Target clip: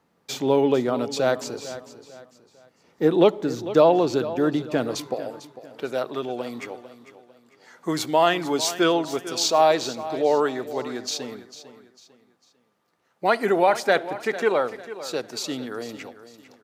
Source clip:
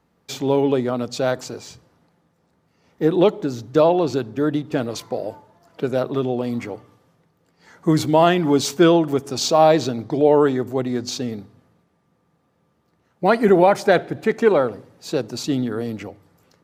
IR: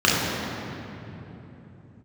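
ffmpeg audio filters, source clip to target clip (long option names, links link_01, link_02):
-af "asetnsamples=nb_out_samples=441:pad=0,asendcmd='5.14 highpass f 790',highpass=frequency=210:poles=1,aecho=1:1:449|898|1347:0.188|0.0659|0.0231"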